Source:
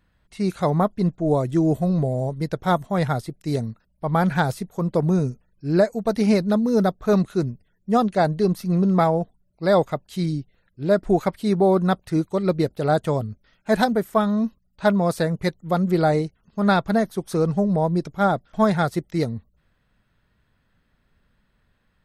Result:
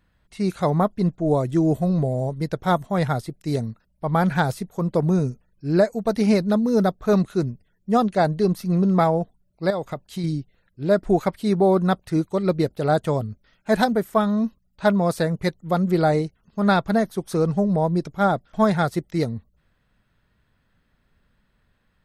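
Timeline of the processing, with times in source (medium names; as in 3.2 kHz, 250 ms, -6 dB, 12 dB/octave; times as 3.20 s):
9.70–10.24 s: compression, threshold -23 dBFS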